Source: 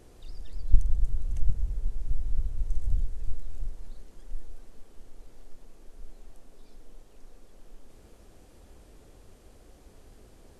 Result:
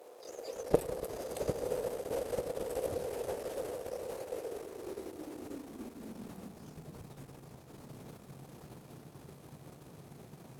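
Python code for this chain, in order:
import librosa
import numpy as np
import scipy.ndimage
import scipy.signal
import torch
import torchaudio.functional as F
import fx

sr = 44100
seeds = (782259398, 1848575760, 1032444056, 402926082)

p1 = fx.formant_shift(x, sr, semitones=5)
p2 = p1 + fx.echo_diffused(p1, sr, ms=1010, feedback_pct=47, wet_db=-5, dry=0)
p3 = fx.power_curve(p2, sr, exponent=1.4)
p4 = fx.filter_sweep_highpass(p3, sr, from_hz=500.0, to_hz=140.0, start_s=4.3, end_s=7.03, q=4.5)
y = p4 * librosa.db_to_amplitude(16.0)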